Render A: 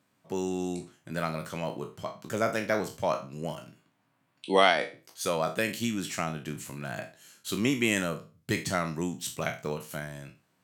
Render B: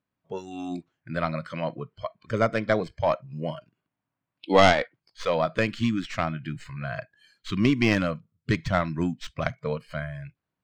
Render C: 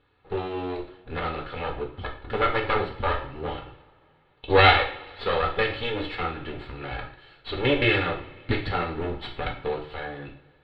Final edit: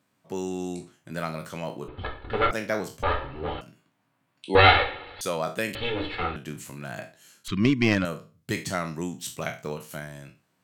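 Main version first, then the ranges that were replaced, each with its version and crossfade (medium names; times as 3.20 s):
A
1.88–2.51 s: from C
3.03–3.61 s: from C
4.55–5.21 s: from C
5.75–6.36 s: from C
7.48–8.05 s: from B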